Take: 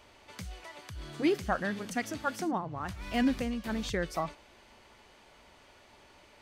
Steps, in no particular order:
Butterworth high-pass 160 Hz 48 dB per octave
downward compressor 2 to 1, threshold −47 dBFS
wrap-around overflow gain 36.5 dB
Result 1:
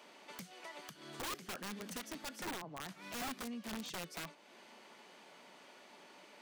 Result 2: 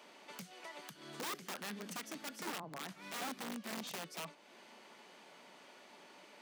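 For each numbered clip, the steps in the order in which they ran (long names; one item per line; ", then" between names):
downward compressor, then Butterworth high-pass, then wrap-around overflow
downward compressor, then wrap-around overflow, then Butterworth high-pass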